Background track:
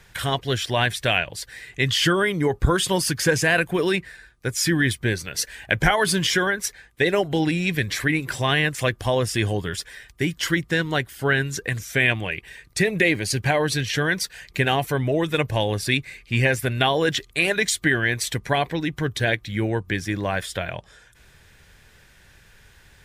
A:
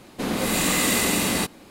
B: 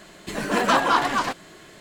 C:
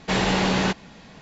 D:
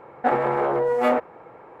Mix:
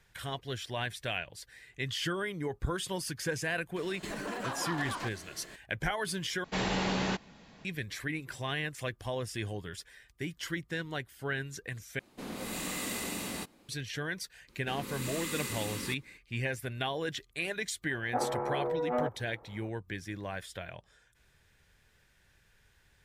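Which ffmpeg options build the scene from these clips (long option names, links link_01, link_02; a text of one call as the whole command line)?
ffmpeg -i bed.wav -i cue0.wav -i cue1.wav -i cue2.wav -i cue3.wav -filter_complex "[1:a]asplit=2[link_01][link_02];[0:a]volume=-14dB[link_03];[2:a]acompressor=threshold=-30dB:ratio=6:attack=3.2:release=140:knee=1:detection=peak[link_04];[link_02]asuperstop=centerf=690:order=4:qfactor=2[link_05];[4:a]lowpass=1300[link_06];[link_03]asplit=3[link_07][link_08][link_09];[link_07]atrim=end=6.444[link_10];[3:a]atrim=end=1.21,asetpts=PTS-STARTPTS,volume=-9.5dB[link_11];[link_08]atrim=start=7.646:end=11.994[link_12];[link_01]atrim=end=1.7,asetpts=PTS-STARTPTS,volume=-15dB[link_13];[link_09]atrim=start=13.686[link_14];[link_04]atrim=end=1.8,asetpts=PTS-STARTPTS,volume=-4.5dB,afade=type=in:duration=0.004:curve=hsin,afade=type=out:start_time=1.796:duration=0.004:curve=hsin,adelay=3760[link_15];[link_05]atrim=end=1.7,asetpts=PTS-STARTPTS,volume=-16dB,afade=type=in:duration=0.004:curve=hsin,afade=type=out:start_time=1.696:duration=0.004:curve=hsin,adelay=14480[link_16];[link_06]atrim=end=1.8,asetpts=PTS-STARTPTS,volume=-10.5dB,afade=type=in:duration=0.004:curve=hsin,afade=type=out:start_time=1.796:duration=0.004:curve=hsin,adelay=17890[link_17];[link_10][link_11]acrossfade=duration=0.004:curve1=hsin:curve2=hsin[link_18];[link_18][link_12]acrossfade=duration=0.004:curve1=hsin:curve2=hsin[link_19];[link_19][link_13]acrossfade=duration=0.004:curve1=hsin:curve2=hsin[link_20];[link_20][link_14]acrossfade=duration=0.004:curve1=hsin:curve2=hsin[link_21];[link_21][link_15][link_16][link_17]amix=inputs=4:normalize=0" out.wav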